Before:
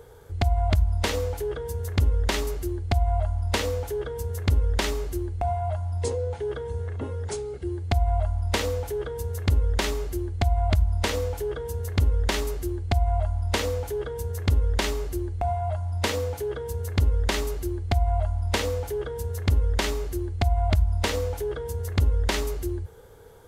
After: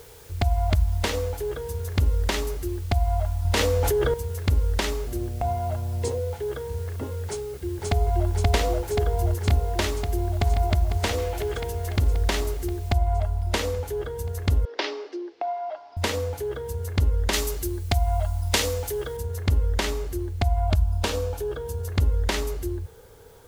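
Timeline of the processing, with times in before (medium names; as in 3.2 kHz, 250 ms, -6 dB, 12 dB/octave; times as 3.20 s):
3.45–4.14 s: level flattener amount 100%
5.06–6.19 s: mains buzz 120 Hz, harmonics 6, -40 dBFS
7.25–8.28 s: echo throw 530 ms, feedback 80%, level -0.5 dB
9.90–10.62 s: echo throw 500 ms, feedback 60%, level -9.5 dB
11.18–11.96 s: peaking EQ 2.5 kHz +7.5 dB 1.7 oct
12.93 s: noise floor step -51 dB -61 dB
14.65–15.97 s: Chebyshev band-pass 300–5300 Hz, order 4
17.33–19.17 s: treble shelf 3 kHz +10 dB
20.67–21.92 s: band-stop 2 kHz, Q 6.2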